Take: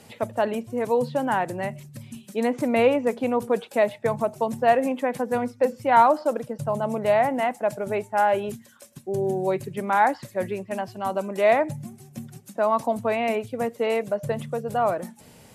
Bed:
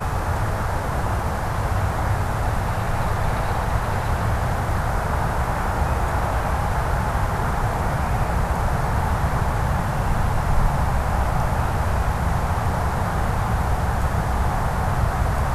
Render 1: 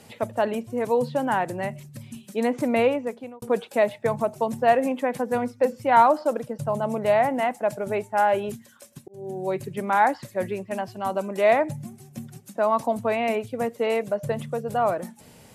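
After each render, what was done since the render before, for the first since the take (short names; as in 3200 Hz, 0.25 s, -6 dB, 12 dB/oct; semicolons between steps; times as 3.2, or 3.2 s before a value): 2.72–3.42 fade out; 9.08–9.65 fade in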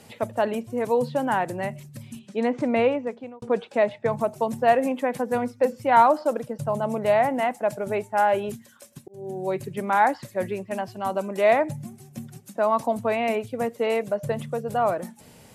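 2.19–4.13 air absorption 91 m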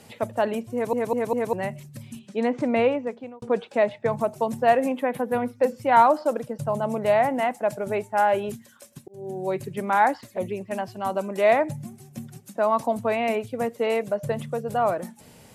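0.73 stutter in place 0.20 s, 4 plays; 4.99–5.55 band shelf 6100 Hz -9.5 dB 1.1 oct; 10.21–10.61 envelope flanger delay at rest 6.7 ms, full sweep at -24 dBFS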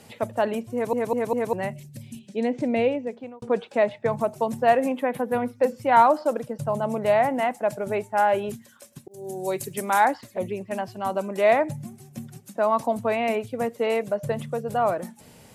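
1.73–3.14 bell 1200 Hz -14 dB 0.76 oct; 9.11–10.05 tone controls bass -4 dB, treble +14 dB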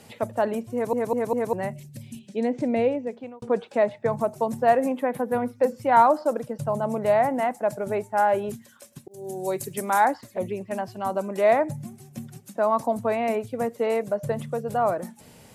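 dynamic EQ 2900 Hz, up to -7 dB, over -45 dBFS, Q 1.4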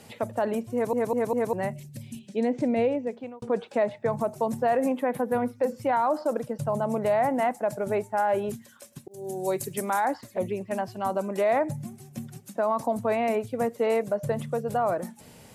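limiter -16 dBFS, peak gain reduction 10 dB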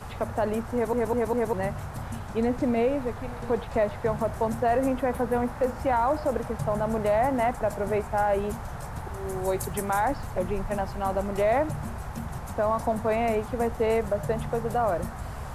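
add bed -15 dB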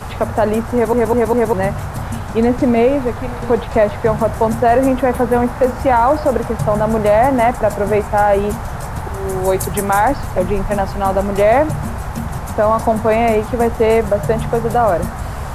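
gain +11.5 dB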